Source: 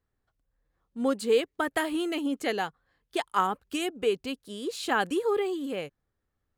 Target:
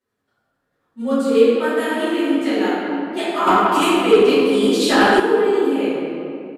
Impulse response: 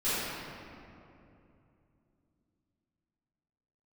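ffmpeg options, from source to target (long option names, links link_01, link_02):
-filter_complex "[0:a]highpass=170,asplit=2[link_01][link_02];[link_02]acompressor=threshold=-34dB:ratio=6,volume=1dB[link_03];[link_01][link_03]amix=inputs=2:normalize=0,tremolo=f=11:d=0.64[link_04];[1:a]atrim=start_sample=2205[link_05];[link_04][link_05]afir=irnorm=-1:irlink=0,aresample=32000,aresample=44100,asettb=1/sr,asplit=3[link_06][link_07][link_08];[link_06]atrim=end=3.474[link_09];[link_07]atrim=start=3.47:end=5.2,asetpts=PTS-STARTPTS,afade=type=in:duration=0.004:curve=qsin,afade=type=out:start_time=1.726:duration=0.004:curve=qsin,acontrast=86[link_10];[link_08]atrim=start=5.196[link_11];[link_09][link_10]acrossfade=duration=0.004:curve1=hsin:curve2=qsin[link_12];[link_12][link_11]acrossfade=duration=0.004:curve1=qsin:curve2=hsin,volume=-2.5dB"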